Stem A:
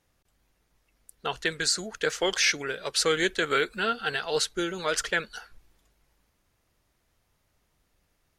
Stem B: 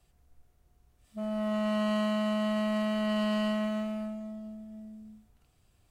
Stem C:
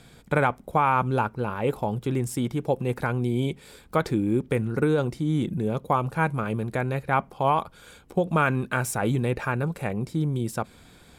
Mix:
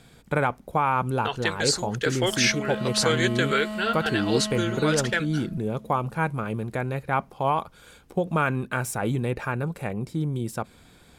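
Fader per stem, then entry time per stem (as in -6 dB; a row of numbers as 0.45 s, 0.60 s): +1.0 dB, -3.5 dB, -1.5 dB; 0.00 s, 1.10 s, 0.00 s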